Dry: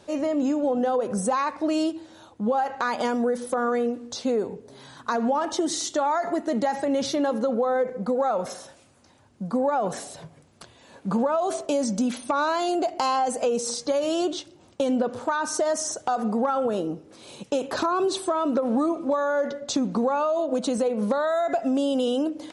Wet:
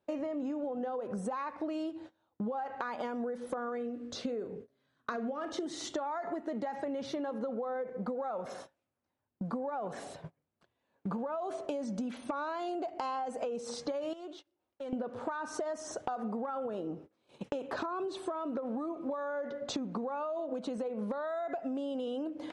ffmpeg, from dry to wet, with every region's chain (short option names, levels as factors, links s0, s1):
-filter_complex "[0:a]asettb=1/sr,asplit=3[s0][s1][s2];[s0]atrim=end=3.774[s3];[s1]atrim=start=3.77:end=5.66,asetpts=PTS-STARTPTS,afade=t=in:d=0.004:c=qsin,afade=t=out:st=1.886:d=0.004:c=qsin,equalizer=f=890:w=4.3:g=-14,asplit=2[s4][s5];[s5]adelay=41,volume=0.237[s6];[s4][s6]amix=inputs=2:normalize=0,atrim=end_sample=83349[s7];[s2]atrim=start=5.656[s8];[s3][s7]acrossfade=d=0.004:c1=hsin:c2=qsin[s9];[s9][s8]acrossfade=d=0.004:c1=qsin:c2=hsin,asettb=1/sr,asplit=3[s10][s11][s12];[s10]atrim=end=14.134[s13];[s11]atrim=start=14.13:end=14.93,asetpts=PTS-STARTPTS,afade=t=in:d=0.004:c=qsin,afade=t=out:st=0.796:d=0.004:c=qsin,equalizer=f=140:w=1:g=-12.5,acompressor=threshold=0.00891:ratio=3:attack=3.2:release=140:knee=1:detection=peak,volume=50.1,asoftclip=hard,volume=0.02[s14];[s12]atrim=start=14.926[s15];[s13][s14]acrossfade=d=0.004:c1=hsin:c2=qsin[s16];[s16][s15]acrossfade=d=0.004:c1=qsin:c2=hsin,agate=range=0.0447:threshold=0.00891:ratio=16:detection=peak,bass=f=250:g=-2,treble=f=4000:g=-14,acompressor=threshold=0.0224:ratio=12"